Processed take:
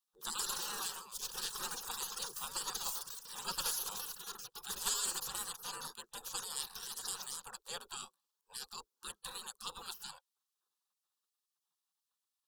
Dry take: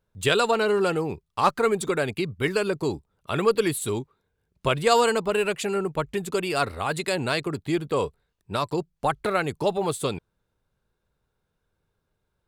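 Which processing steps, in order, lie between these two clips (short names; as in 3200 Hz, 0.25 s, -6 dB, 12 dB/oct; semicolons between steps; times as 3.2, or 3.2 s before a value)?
spectral gate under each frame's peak -25 dB weak; echoes that change speed 0.215 s, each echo +6 st, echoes 3; fixed phaser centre 430 Hz, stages 8; gain +1.5 dB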